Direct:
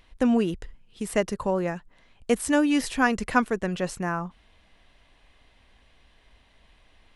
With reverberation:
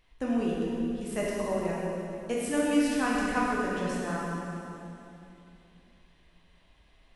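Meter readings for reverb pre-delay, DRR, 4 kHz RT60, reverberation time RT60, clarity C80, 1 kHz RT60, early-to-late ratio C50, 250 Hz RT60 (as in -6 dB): 7 ms, -5.5 dB, 2.6 s, 2.8 s, -0.5 dB, 2.6 s, -2.5 dB, 3.4 s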